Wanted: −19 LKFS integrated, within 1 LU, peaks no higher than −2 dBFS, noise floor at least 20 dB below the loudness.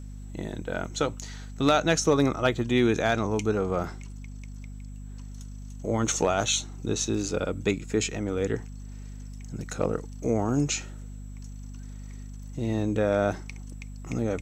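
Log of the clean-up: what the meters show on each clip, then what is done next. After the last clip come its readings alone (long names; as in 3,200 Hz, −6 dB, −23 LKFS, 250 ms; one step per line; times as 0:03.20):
mains hum 50 Hz; hum harmonics up to 250 Hz; level of the hum −37 dBFS; integrated loudness −27.0 LKFS; sample peak −11.0 dBFS; target loudness −19.0 LKFS
→ hum removal 50 Hz, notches 5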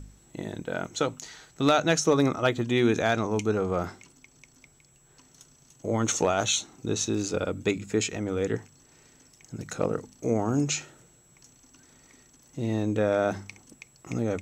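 mains hum none found; integrated loudness −27.5 LKFS; sample peak −11.0 dBFS; target loudness −19.0 LKFS
→ level +8.5 dB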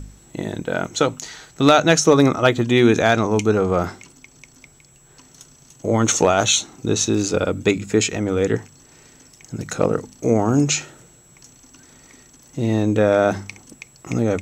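integrated loudness −19.0 LKFS; sample peak −2.5 dBFS; background noise floor −51 dBFS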